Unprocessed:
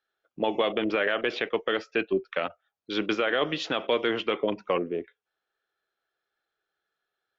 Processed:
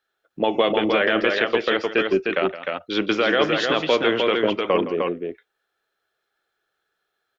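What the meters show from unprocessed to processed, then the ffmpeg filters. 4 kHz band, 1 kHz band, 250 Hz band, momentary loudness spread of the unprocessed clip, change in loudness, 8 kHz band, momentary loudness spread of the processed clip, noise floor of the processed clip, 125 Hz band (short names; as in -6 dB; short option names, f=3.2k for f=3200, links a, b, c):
+7.0 dB, +7.0 dB, +7.0 dB, 7 LU, +7.0 dB, n/a, 7 LU, -78 dBFS, +7.0 dB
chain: -af "aecho=1:1:165|305:0.211|0.631,volume=5.5dB"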